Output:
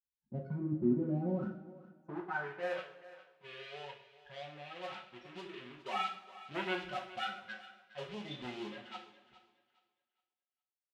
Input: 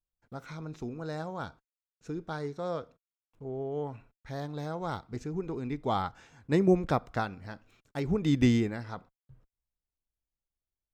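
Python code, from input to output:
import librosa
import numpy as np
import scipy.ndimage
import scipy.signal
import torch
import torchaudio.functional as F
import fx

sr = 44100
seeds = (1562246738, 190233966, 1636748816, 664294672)

p1 = fx.peak_eq(x, sr, hz=63.0, db=13.0, octaves=0.42)
p2 = p1 + 0.75 * np.pad(p1, (int(5.4 * sr / 1000.0), 0))[:len(p1)]
p3 = fx.level_steps(p2, sr, step_db=10)
p4 = fx.spec_topn(p3, sr, count=8)
p5 = fx.leveller(p4, sr, passes=3)
p6 = fx.filter_sweep_bandpass(p5, sr, from_hz=250.0, to_hz=3000.0, start_s=1.34, end_s=2.83, q=2.4)
p7 = p6 + fx.echo_thinned(p6, sr, ms=413, feedback_pct=26, hz=350.0, wet_db=-16.0, dry=0)
p8 = fx.rev_double_slope(p7, sr, seeds[0], early_s=0.46, late_s=1.8, knee_db=-18, drr_db=-1.0)
y = F.gain(torch.from_numpy(p8), 3.0).numpy()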